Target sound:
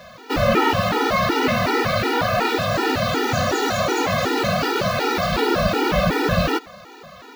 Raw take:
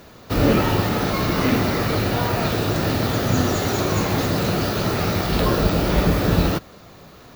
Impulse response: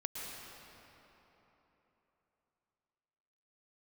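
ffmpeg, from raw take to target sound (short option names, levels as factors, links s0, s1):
-filter_complex "[0:a]asplit=2[s0][s1];[s1]highpass=f=720:p=1,volume=7.08,asoftclip=type=tanh:threshold=0.668[s2];[s0][s2]amix=inputs=2:normalize=0,lowpass=f=2600:p=1,volume=0.501,afftfilt=real='re*gt(sin(2*PI*2.7*pts/sr)*(1-2*mod(floor(b*sr/1024/250),2)),0)':imag='im*gt(sin(2*PI*2.7*pts/sr)*(1-2*mod(floor(b*sr/1024/250),2)),0)':win_size=1024:overlap=0.75"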